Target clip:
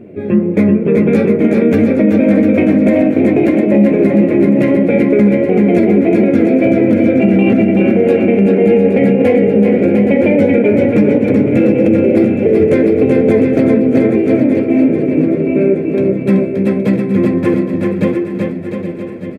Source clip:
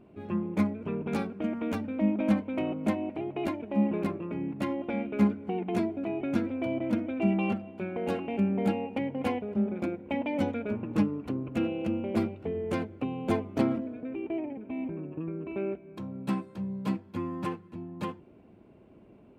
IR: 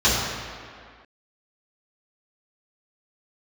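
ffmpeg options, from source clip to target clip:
-filter_complex "[0:a]equalizer=f=490:t=o:w=0.8:g=7.5,bandreject=f=2.9k:w=11,asplit=2[a][b];[b]aecho=0:1:819|1638|2457|3276|4095|4914|5733:0.224|0.134|0.0806|0.0484|0.029|0.0174|0.0104[c];[a][c]amix=inputs=2:normalize=0,flanger=delay=8.1:depth=7.4:regen=52:speed=1.6:shape=triangular,equalizer=f=125:t=o:w=1:g=8,equalizer=f=250:t=o:w=1:g=6,equalizer=f=500:t=o:w=1:g=7,equalizer=f=1k:t=o:w=1:g=-10,equalizer=f=2k:t=o:w=1:g=12,equalizer=f=4k:t=o:w=1:g=-3,asplit=2[d][e];[e]aecho=0:1:380|703|977.6|1211|1409:0.631|0.398|0.251|0.158|0.1[f];[d][f]amix=inputs=2:normalize=0,alimiter=level_in=15.5dB:limit=-1dB:release=50:level=0:latency=1,volume=-1dB"

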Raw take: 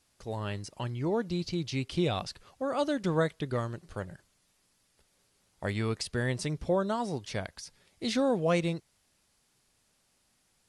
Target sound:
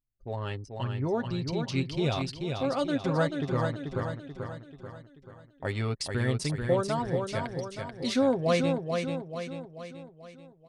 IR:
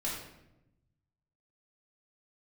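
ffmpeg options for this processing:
-af "anlmdn=0.631,aecho=1:1:7.5:0.49,aecho=1:1:436|872|1308|1744|2180|2616:0.562|0.281|0.141|0.0703|0.0351|0.0176"

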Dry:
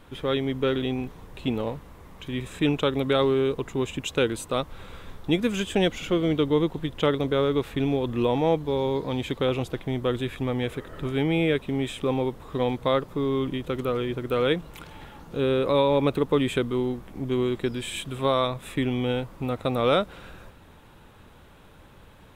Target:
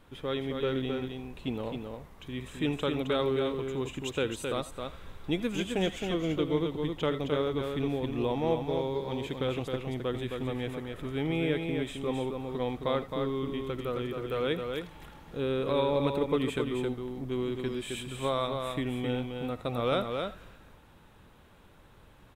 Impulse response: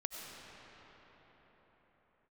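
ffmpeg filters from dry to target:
-filter_complex "[0:a]aecho=1:1:265:0.562[a];[1:a]atrim=start_sample=2205,atrim=end_sample=3969[b];[a][b]afir=irnorm=-1:irlink=0,volume=-4dB"

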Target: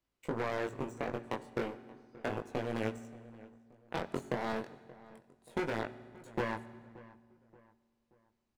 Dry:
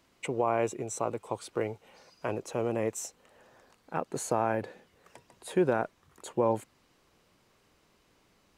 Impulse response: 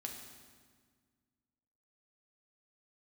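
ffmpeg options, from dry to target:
-filter_complex "[0:a]lowshelf=f=85:g=11.5,volume=27dB,asoftclip=hard,volume=-27dB,acrossover=split=260|1200[a][b][c];[a]acompressor=threshold=-42dB:ratio=4[d];[b]acompressor=threshold=-35dB:ratio=4[e];[c]acompressor=threshold=-47dB:ratio=4[f];[d][e][f]amix=inputs=3:normalize=0,aeval=exprs='0.0447*(cos(1*acos(clip(val(0)/0.0447,-1,1)))-cos(1*PI/2))+0.0141*(cos(3*acos(clip(val(0)/0.0447,-1,1)))-cos(3*PI/2))':c=same,flanger=delay=18:depth=4.6:speed=0.33,asplit=2[g][h];[h]adelay=578,lowpass=f=2k:p=1,volume=-19.5dB,asplit=2[i][j];[j]adelay=578,lowpass=f=2k:p=1,volume=0.43,asplit=2[k][l];[l]adelay=578,lowpass=f=2k:p=1,volume=0.43[m];[g][i][k][m]amix=inputs=4:normalize=0,asplit=2[n][o];[1:a]atrim=start_sample=2205[p];[o][p]afir=irnorm=-1:irlink=0,volume=-5.5dB[q];[n][q]amix=inputs=2:normalize=0,volume=4.5dB"

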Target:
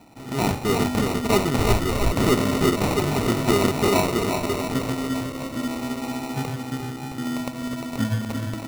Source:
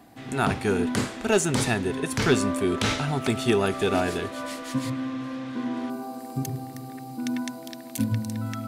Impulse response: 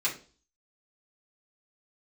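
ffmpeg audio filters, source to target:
-filter_complex "[0:a]aecho=1:1:350|665|948.5|1204|1433:0.631|0.398|0.251|0.158|0.1,acrusher=samples=27:mix=1:aa=0.000001,asplit=3[a][b][c];[a]afade=t=out:st=1.56:d=0.02[d];[b]asubboost=boost=11.5:cutoff=64,afade=t=in:st=1.56:d=0.02,afade=t=out:st=2.11:d=0.02[e];[c]afade=t=in:st=2.11:d=0.02[f];[d][e][f]amix=inputs=3:normalize=0,volume=1.5dB"

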